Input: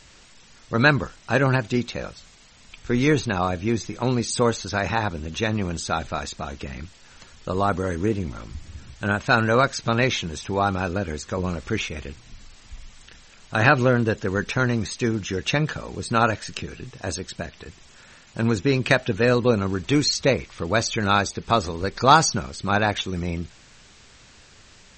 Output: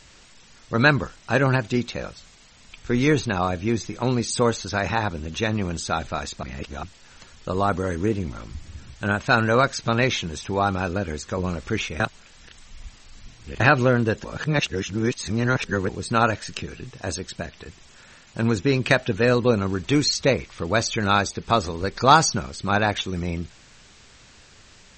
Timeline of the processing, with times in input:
6.43–6.83 s: reverse
12.00–13.60 s: reverse
14.24–15.89 s: reverse

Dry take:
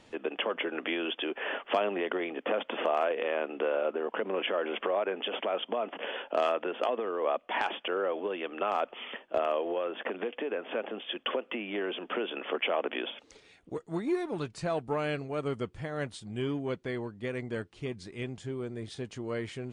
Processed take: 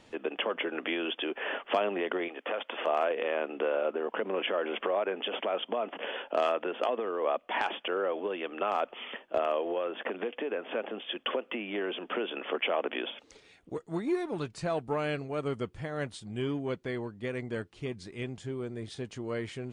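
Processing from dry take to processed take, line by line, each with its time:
2.28–2.87 s: high-pass 720 Hz 6 dB/octave

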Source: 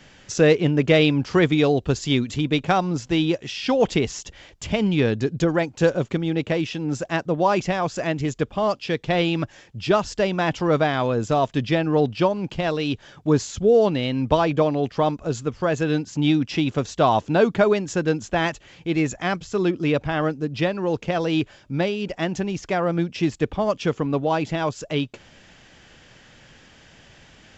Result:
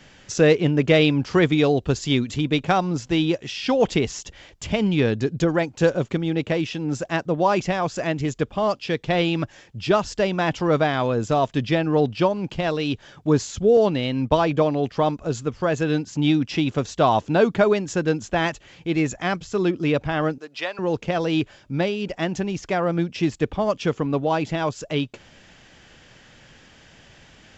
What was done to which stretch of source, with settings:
13.77–14.38 s: expander -25 dBFS
20.38–20.79 s: high-pass 760 Hz

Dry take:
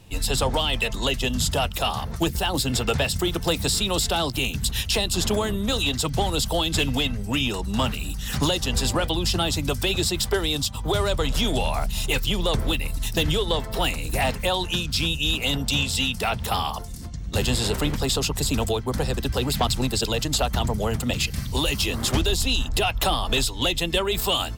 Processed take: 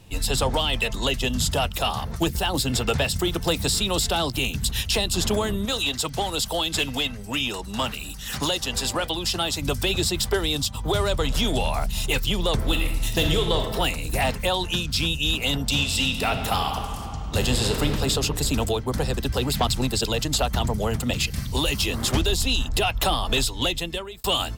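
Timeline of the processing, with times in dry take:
5.65–9.62 s: bass shelf 290 Hz -9 dB
12.67–13.69 s: reverb throw, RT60 0.88 s, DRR 3.5 dB
15.65–17.98 s: reverb throw, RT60 2.9 s, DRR 5.5 dB
23.60–24.24 s: fade out

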